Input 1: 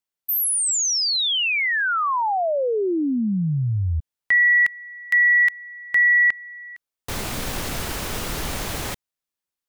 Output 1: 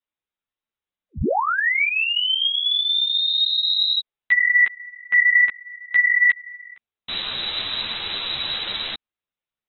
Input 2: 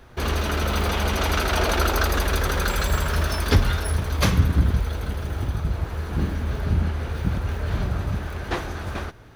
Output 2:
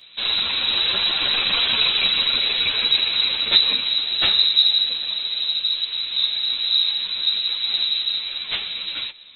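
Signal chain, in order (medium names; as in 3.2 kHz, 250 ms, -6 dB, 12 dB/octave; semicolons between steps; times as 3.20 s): frequency inversion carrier 3.9 kHz; three-phase chorus; trim +3.5 dB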